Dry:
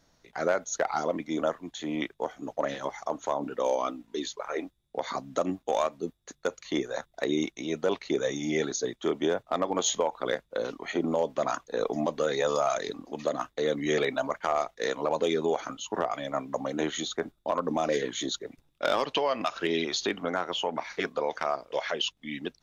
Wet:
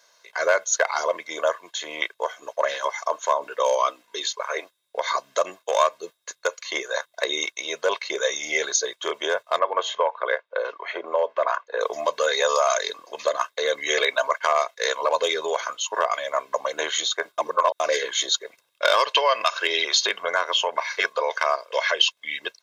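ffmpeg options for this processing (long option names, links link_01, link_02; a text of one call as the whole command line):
ffmpeg -i in.wav -filter_complex "[0:a]asettb=1/sr,asplit=3[link_01][link_02][link_03];[link_01]atrim=end=9.594[link_04];[link_02]atrim=start=9.59:end=11.81,asetpts=PTS-STARTPTS,afade=type=in:duration=0.004:curve=qsin,afade=type=out:start_time=2.216:duration=0.004:curve=qsin,highpass=300,lowpass=2100[link_05];[link_03]atrim=start=11.806[link_06];[link_04][link_05]acrossfade=duration=0.004:curve1=hsin:curve2=qsin[link_07];[link_07][link_06]acrossfade=duration=0.004:curve1=qsin:curve2=hsin,asplit=3[link_08][link_09][link_10];[link_08]atrim=end=17.382[link_11];[link_09]atrim=start=17.378:end=17.802,asetpts=PTS-STARTPTS,areverse[link_12];[link_10]atrim=start=17.798[link_13];[link_11][link_12]acrossfade=duration=0.004:curve1=hsin:curve2=hsin[link_14];[link_14][link_13]acrossfade=duration=0.004:curve1=hsin:curve2=hsin,highpass=830,aecho=1:1:1.9:0.73,volume=9dB" out.wav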